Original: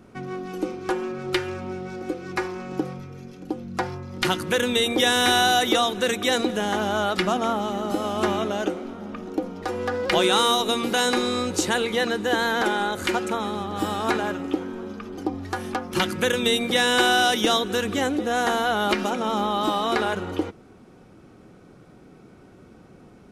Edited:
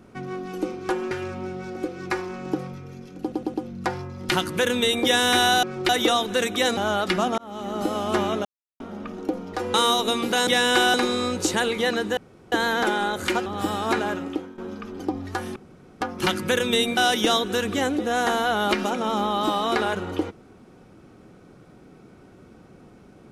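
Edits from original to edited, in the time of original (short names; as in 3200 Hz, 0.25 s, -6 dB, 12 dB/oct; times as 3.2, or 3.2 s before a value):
1.11–1.37 move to 5.56
3.47 stutter 0.11 s, 4 plays
6.44–6.86 cut
7.47–7.89 fade in
8.54–8.89 mute
9.83–10.35 cut
12.31 insert room tone 0.35 s
13.25–13.64 cut
14.39–14.76 fade out, to -13.5 dB
15.74 insert room tone 0.45 s
16.7–17.17 move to 11.08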